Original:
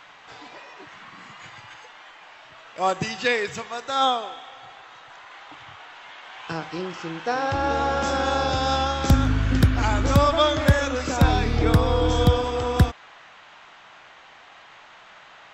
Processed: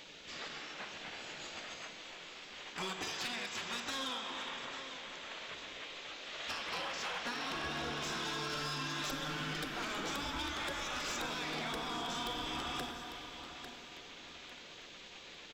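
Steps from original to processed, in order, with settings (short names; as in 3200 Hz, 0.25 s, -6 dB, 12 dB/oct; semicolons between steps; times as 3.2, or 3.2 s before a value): dynamic EQ 3300 Hz, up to +6 dB, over -45 dBFS, Q 1.5; spectral gate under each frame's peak -10 dB weak; 8.24–9.7 comb 6.7 ms, depth 69%; compressor 16:1, threshold -38 dBFS, peak gain reduction 20 dB; feedback echo 0.849 s, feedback 34%, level -12.5 dB; reverb RT60 2.9 s, pre-delay 22 ms, DRR 6.5 dB; soft clip -30 dBFS, distortion -23 dB; bell 110 Hz -14 dB 0.33 oct; hard clip -36.5 dBFS, distortion -20 dB; gain +3 dB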